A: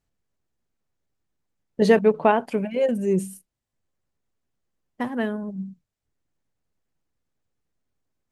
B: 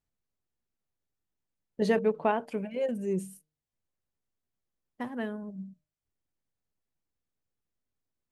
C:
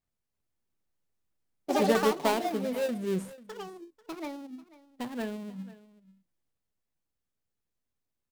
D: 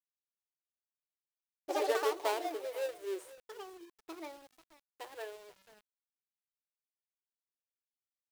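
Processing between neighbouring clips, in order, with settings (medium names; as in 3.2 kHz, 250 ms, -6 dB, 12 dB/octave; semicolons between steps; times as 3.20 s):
de-hum 152.7 Hz, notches 4; trim -8.5 dB
dead-time distortion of 0.2 ms; ever faster or slower copies 343 ms, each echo +5 st, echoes 2; delay 491 ms -19.5 dB
brick-wall FIR high-pass 300 Hz; bit crusher 9-bit; trim -6 dB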